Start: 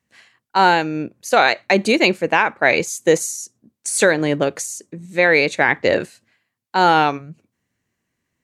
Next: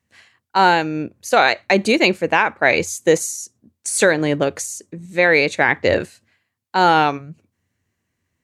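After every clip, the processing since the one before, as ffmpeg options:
-af "equalizer=f=88:t=o:w=0.35:g=12"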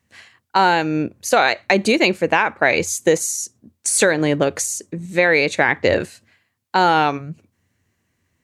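-af "acompressor=threshold=-21dB:ratio=2,volume=5dB"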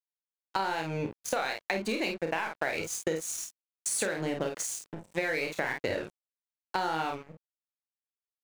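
-af "aeval=exprs='sgn(val(0))*max(abs(val(0))-0.0422,0)':c=same,aecho=1:1:31|50:0.473|0.473,acompressor=threshold=-21dB:ratio=6,volume=-6.5dB"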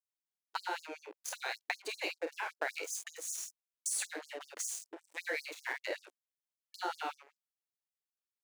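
-af "afftfilt=real='re*gte(b*sr/1024,260*pow(5000/260,0.5+0.5*sin(2*PI*5.2*pts/sr)))':imag='im*gte(b*sr/1024,260*pow(5000/260,0.5+0.5*sin(2*PI*5.2*pts/sr)))':win_size=1024:overlap=0.75,volume=-4dB"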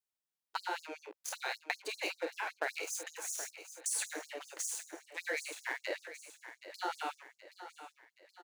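-af "aecho=1:1:774|1548|2322|3096|3870:0.237|0.116|0.0569|0.0279|0.0137"

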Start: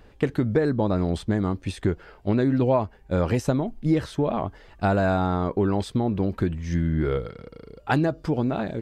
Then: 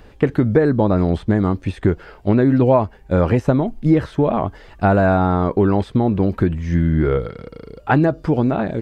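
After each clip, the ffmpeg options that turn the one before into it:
-filter_complex "[0:a]acrossover=split=2600[a][b];[b]acompressor=threshold=-55dB:ratio=4:attack=1:release=60[c];[a][c]amix=inputs=2:normalize=0,volume=7dB"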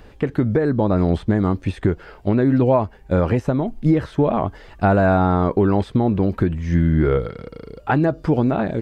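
-af "alimiter=limit=-7dB:level=0:latency=1:release=307"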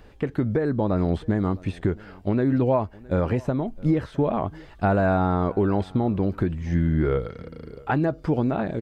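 -af "aecho=1:1:663:0.0668,volume=-5dB"

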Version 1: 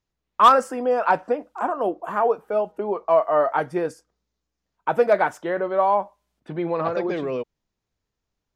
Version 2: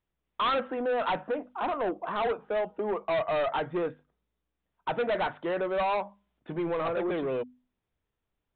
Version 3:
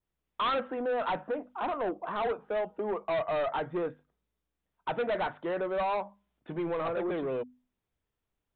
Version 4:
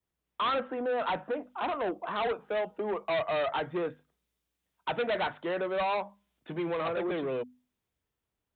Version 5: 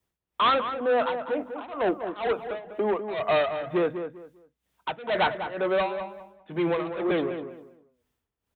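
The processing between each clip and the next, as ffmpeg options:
-af "bandreject=f=50:t=h:w=6,bandreject=f=100:t=h:w=6,bandreject=f=150:t=h:w=6,bandreject=f=200:t=h:w=6,bandreject=f=250:t=h:w=6,aresample=8000,asoftclip=type=tanh:threshold=-23dB,aresample=44100,volume=-1.5dB"
-af "adynamicequalizer=threshold=0.00355:dfrequency=2900:dqfactor=1.2:tfrequency=2900:tqfactor=1.2:attack=5:release=100:ratio=0.375:range=2:mode=cutabove:tftype=bell,volume=-2dB"
-filter_complex "[0:a]highpass=43,acrossover=split=130|720|2100[a][b][c][d];[d]dynaudnorm=f=260:g=9:m=7dB[e];[a][b][c][e]amix=inputs=4:normalize=0"
-filter_complex "[0:a]tremolo=f=2.1:d=0.91,asplit=2[a][b];[b]adelay=198,lowpass=f=1.9k:p=1,volume=-8.5dB,asplit=2[c][d];[d]adelay=198,lowpass=f=1.9k:p=1,volume=0.26,asplit=2[e][f];[f]adelay=198,lowpass=f=1.9k:p=1,volume=0.26[g];[a][c][e][g]amix=inputs=4:normalize=0,volume=8dB"

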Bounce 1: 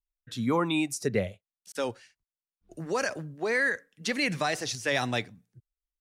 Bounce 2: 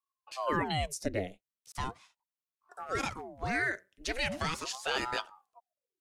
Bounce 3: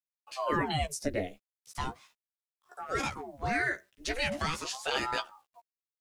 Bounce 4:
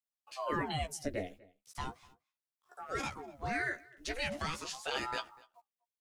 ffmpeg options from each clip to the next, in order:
-af "aeval=exprs='val(0)*sin(2*PI*600*n/s+600*0.85/0.39*sin(2*PI*0.39*n/s))':c=same,volume=-2dB"
-filter_complex "[0:a]acrusher=bits=11:mix=0:aa=0.000001,asplit=2[a][b];[b]adelay=14,volume=-5dB[c];[a][c]amix=inputs=2:normalize=0"
-filter_complex "[0:a]asplit=2[a][b];[b]adelay=244.9,volume=-23dB,highshelf=f=4k:g=-5.51[c];[a][c]amix=inputs=2:normalize=0,volume=-5dB"

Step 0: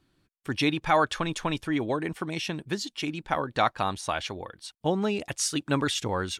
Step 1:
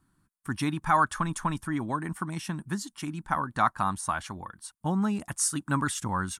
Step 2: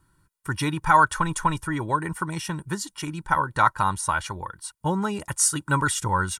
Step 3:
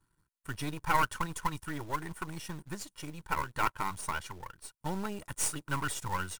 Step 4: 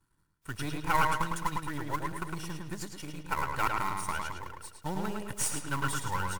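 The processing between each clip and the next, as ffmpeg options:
-af "firequalizer=gain_entry='entry(130,0);entry(190,4);entry(450,-14);entry(1000,4);entry(1500,1);entry(2400,-11);entry(3800,-11);entry(9300,8);entry(14000,0)':delay=0.05:min_phase=1"
-af "aecho=1:1:2.1:0.7,volume=4.5dB"
-af "aeval=exprs='if(lt(val(0),0),0.251*val(0),val(0))':c=same,acrusher=bits=4:mode=log:mix=0:aa=0.000001,volume=-7.5dB"
-filter_complex "[0:a]asplit=2[a][b];[b]adelay=107,lowpass=f=4.9k:p=1,volume=-3dB,asplit=2[c][d];[d]adelay=107,lowpass=f=4.9k:p=1,volume=0.43,asplit=2[e][f];[f]adelay=107,lowpass=f=4.9k:p=1,volume=0.43,asplit=2[g][h];[h]adelay=107,lowpass=f=4.9k:p=1,volume=0.43,asplit=2[i][j];[j]adelay=107,lowpass=f=4.9k:p=1,volume=0.43,asplit=2[k][l];[l]adelay=107,lowpass=f=4.9k:p=1,volume=0.43[m];[c][e][g][i][k][m]amix=inputs=6:normalize=0[n];[a][n]amix=inputs=2:normalize=0" -ar 48000 -c:a wmav2 -b:a 128k

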